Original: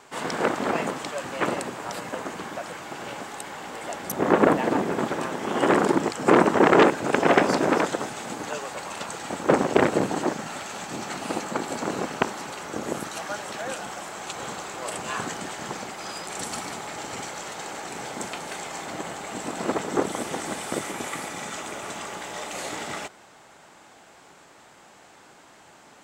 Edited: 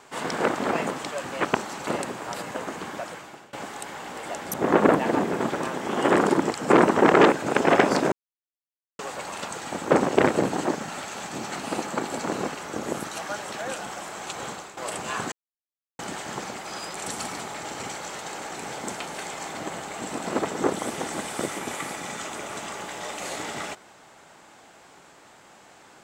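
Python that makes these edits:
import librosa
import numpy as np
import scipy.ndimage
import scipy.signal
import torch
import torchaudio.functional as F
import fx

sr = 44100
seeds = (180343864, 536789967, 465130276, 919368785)

y = fx.edit(x, sr, fx.fade_out_to(start_s=2.61, length_s=0.5, floor_db=-24.0),
    fx.silence(start_s=7.7, length_s=0.87),
    fx.move(start_s=12.13, length_s=0.42, to_s=1.45),
    fx.fade_out_to(start_s=14.46, length_s=0.31, floor_db=-11.5),
    fx.insert_silence(at_s=15.32, length_s=0.67), tone=tone)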